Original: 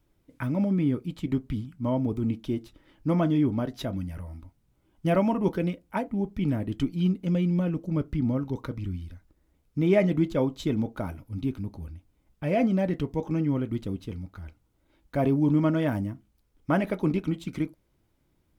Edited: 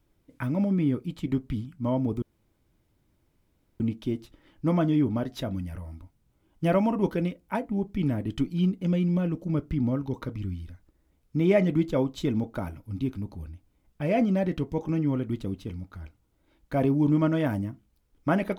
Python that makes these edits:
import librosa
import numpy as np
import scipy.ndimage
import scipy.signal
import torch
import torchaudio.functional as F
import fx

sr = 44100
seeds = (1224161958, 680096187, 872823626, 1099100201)

y = fx.edit(x, sr, fx.insert_room_tone(at_s=2.22, length_s=1.58), tone=tone)